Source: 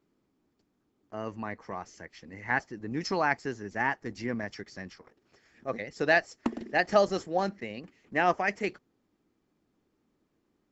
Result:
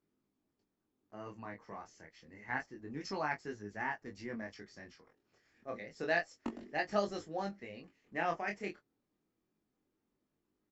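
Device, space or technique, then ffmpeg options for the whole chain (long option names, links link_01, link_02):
double-tracked vocal: -filter_complex "[0:a]asplit=2[link_01][link_02];[link_02]adelay=19,volume=-11.5dB[link_03];[link_01][link_03]amix=inputs=2:normalize=0,flanger=delay=19.5:depth=6.3:speed=0.28,volume=-6.5dB"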